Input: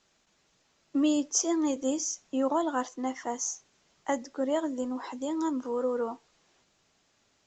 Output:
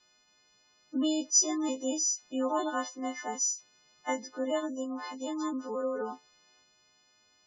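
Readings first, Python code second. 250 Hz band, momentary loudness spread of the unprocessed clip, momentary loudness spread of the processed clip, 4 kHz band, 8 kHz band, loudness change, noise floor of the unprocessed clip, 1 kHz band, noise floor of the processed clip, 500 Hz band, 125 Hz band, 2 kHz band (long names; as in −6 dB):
−3.5 dB, 8 LU, 13 LU, +2.0 dB, +4.0 dB, −1.0 dB, −70 dBFS, −2.0 dB, −67 dBFS, −3.0 dB, can't be measured, +1.0 dB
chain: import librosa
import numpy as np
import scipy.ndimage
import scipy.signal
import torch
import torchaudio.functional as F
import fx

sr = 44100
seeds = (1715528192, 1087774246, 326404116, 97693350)

y = fx.freq_snap(x, sr, grid_st=3)
y = fx.spec_gate(y, sr, threshold_db=-30, keep='strong')
y = scipy.signal.sosfilt(scipy.signal.butter(4, 5800.0, 'lowpass', fs=sr, output='sos'), y)
y = y * librosa.db_to_amplitude(-3.0)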